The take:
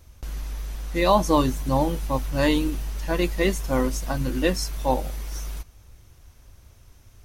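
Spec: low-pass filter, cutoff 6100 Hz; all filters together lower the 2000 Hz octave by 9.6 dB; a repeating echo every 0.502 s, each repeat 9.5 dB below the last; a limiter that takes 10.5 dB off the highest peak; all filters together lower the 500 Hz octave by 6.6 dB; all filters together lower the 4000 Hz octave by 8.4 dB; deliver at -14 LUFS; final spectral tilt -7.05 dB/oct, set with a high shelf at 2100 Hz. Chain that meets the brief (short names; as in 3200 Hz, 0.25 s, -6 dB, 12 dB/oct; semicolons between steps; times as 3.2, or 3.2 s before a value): LPF 6100 Hz; bell 500 Hz -7.5 dB; bell 2000 Hz -8.5 dB; high shelf 2100 Hz -3.5 dB; bell 4000 Hz -3.5 dB; limiter -21 dBFS; feedback echo 0.502 s, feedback 33%, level -9.5 dB; gain +17 dB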